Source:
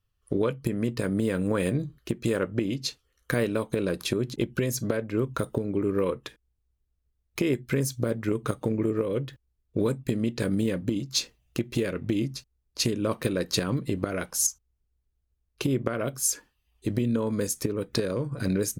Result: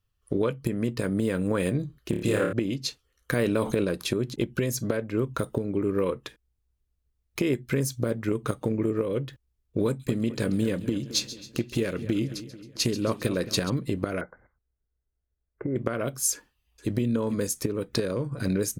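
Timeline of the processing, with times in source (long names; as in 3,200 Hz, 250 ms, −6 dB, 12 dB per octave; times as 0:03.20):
0:02.10–0:02.53: flutter between parallel walls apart 4.8 metres, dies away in 0.53 s
0:03.39–0:03.84: envelope flattener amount 70%
0:09.86–0:13.70: echo with a time of its own for lows and highs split 2,800 Hz, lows 219 ms, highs 135 ms, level −14 dB
0:14.21–0:15.76: Chebyshev low-pass with heavy ripple 2,100 Hz, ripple 6 dB
0:16.33–0:16.92: delay throw 450 ms, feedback 25%, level −11 dB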